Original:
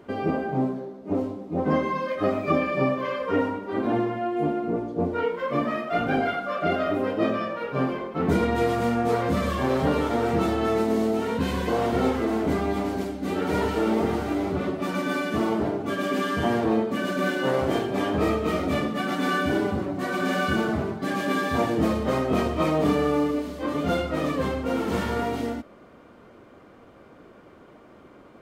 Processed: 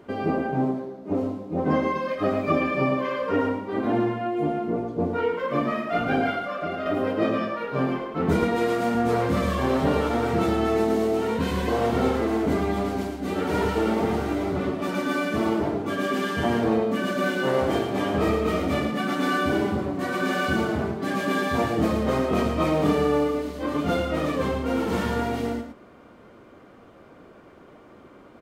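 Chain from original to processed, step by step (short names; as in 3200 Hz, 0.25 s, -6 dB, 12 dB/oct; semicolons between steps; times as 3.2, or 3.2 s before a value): 6.45–6.86 compressor 4:1, threshold -28 dBFS, peak gain reduction 7.5 dB; 8.43–8.95 HPF 200 Hz 12 dB/oct; echo 0.111 s -7.5 dB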